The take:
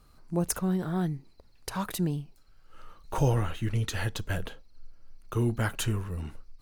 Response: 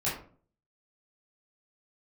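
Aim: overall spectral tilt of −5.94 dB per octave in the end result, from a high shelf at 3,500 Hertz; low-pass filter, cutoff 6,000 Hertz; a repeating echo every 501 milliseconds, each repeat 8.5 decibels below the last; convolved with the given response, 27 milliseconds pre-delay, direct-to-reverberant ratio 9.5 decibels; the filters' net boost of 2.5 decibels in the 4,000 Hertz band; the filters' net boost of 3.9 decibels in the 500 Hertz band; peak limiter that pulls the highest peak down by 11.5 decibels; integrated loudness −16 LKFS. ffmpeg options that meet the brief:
-filter_complex "[0:a]lowpass=6000,equalizer=frequency=500:width_type=o:gain=5,highshelf=frequency=3500:gain=-8,equalizer=frequency=4000:width_type=o:gain=9,alimiter=level_in=0.5dB:limit=-24dB:level=0:latency=1,volume=-0.5dB,aecho=1:1:501|1002|1503|2004:0.376|0.143|0.0543|0.0206,asplit=2[link_01][link_02];[1:a]atrim=start_sample=2205,adelay=27[link_03];[link_02][link_03]afir=irnorm=-1:irlink=0,volume=-17dB[link_04];[link_01][link_04]amix=inputs=2:normalize=0,volume=18.5dB"

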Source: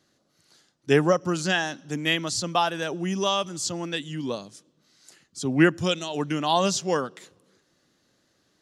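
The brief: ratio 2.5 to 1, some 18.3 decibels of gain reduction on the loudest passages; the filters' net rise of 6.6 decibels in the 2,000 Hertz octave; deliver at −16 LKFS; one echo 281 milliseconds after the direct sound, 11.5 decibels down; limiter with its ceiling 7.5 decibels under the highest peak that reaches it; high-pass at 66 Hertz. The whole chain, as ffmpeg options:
ffmpeg -i in.wav -af "highpass=66,equalizer=frequency=2000:width_type=o:gain=8.5,acompressor=threshold=-40dB:ratio=2.5,alimiter=level_in=3.5dB:limit=-24dB:level=0:latency=1,volume=-3.5dB,aecho=1:1:281:0.266,volume=23dB" out.wav

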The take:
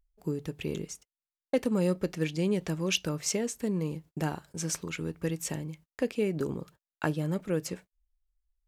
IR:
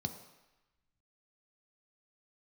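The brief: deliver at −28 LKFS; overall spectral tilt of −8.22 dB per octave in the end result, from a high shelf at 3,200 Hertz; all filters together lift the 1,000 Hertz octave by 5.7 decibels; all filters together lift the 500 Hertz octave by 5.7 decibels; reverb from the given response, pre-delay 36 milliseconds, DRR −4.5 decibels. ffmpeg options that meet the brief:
-filter_complex "[0:a]equalizer=frequency=500:width_type=o:gain=5.5,equalizer=frequency=1000:width_type=o:gain=5,highshelf=frequency=3200:gain=4,asplit=2[link_01][link_02];[1:a]atrim=start_sample=2205,adelay=36[link_03];[link_02][link_03]afir=irnorm=-1:irlink=0,volume=4dB[link_04];[link_01][link_04]amix=inputs=2:normalize=0,volume=-10dB"

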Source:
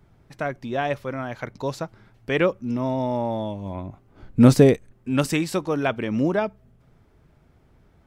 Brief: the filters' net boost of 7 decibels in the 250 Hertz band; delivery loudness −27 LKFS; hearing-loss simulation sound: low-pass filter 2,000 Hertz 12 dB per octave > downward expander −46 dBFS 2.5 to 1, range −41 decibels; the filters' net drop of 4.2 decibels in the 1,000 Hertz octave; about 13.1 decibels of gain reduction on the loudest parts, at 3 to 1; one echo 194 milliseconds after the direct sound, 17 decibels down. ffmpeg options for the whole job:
ffmpeg -i in.wav -af "equalizer=frequency=250:width_type=o:gain=8,equalizer=frequency=1000:width_type=o:gain=-6.5,acompressor=threshold=-20dB:ratio=3,lowpass=2000,aecho=1:1:194:0.141,agate=range=-41dB:threshold=-46dB:ratio=2.5,volume=-1.5dB" out.wav

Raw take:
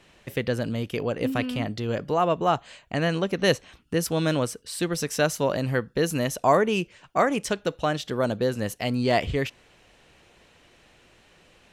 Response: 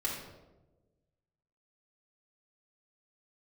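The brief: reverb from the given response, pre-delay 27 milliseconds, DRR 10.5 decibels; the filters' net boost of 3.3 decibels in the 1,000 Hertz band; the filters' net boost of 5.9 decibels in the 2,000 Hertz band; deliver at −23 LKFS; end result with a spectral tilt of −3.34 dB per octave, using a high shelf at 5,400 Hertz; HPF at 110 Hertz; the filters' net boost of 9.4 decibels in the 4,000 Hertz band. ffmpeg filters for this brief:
-filter_complex "[0:a]highpass=110,equalizer=frequency=1000:width_type=o:gain=3,equalizer=frequency=2000:width_type=o:gain=3.5,equalizer=frequency=4000:width_type=o:gain=8,highshelf=frequency=5400:gain=7.5,asplit=2[link_01][link_02];[1:a]atrim=start_sample=2205,adelay=27[link_03];[link_02][link_03]afir=irnorm=-1:irlink=0,volume=-15dB[link_04];[link_01][link_04]amix=inputs=2:normalize=0,volume=-0.5dB"

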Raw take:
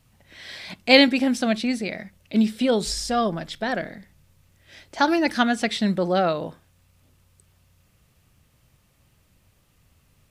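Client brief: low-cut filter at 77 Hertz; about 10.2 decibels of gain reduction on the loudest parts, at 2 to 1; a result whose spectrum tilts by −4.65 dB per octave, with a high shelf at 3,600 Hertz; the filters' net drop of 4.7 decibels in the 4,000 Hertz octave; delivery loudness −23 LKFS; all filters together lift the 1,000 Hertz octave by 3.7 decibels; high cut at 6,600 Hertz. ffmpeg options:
ffmpeg -i in.wav -af "highpass=77,lowpass=6600,equalizer=frequency=1000:width_type=o:gain=5.5,highshelf=frequency=3600:gain=4,equalizer=frequency=4000:width_type=o:gain=-8.5,acompressor=threshold=-29dB:ratio=2,volume=6.5dB" out.wav

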